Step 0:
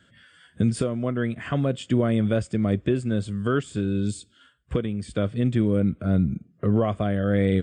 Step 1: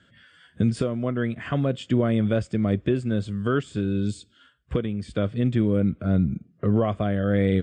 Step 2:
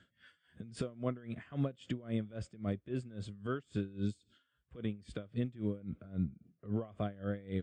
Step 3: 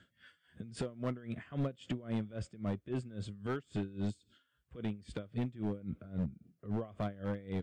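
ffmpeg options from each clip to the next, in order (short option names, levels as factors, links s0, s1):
-af "lowpass=6400"
-af "alimiter=limit=0.126:level=0:latency=1:release=149,aeval=exprs='val(0)*pow(10,-21*(0.5-0.5*cos(2*PI*3.7*n/s))/20)':c=same,volume=0.562"
-af "volume=33.5,asoftclip=hard,volume=0.0299,volume=1.19"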